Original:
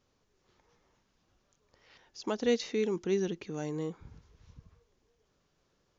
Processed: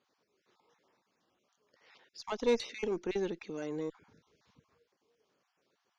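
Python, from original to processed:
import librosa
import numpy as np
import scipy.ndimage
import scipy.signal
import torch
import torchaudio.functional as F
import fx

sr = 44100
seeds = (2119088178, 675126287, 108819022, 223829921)

y = fx.spec_dropout(x, sr, seeds[0], share_pct=25)
y = fx.bandpass_edges(y, sr, low_hz=250.0, high_hz=6100.0)
y = fx.cheby_harmonics(y, sr, harmonics=(4,), levels_db=(-18,), full_scale_db=-18.0)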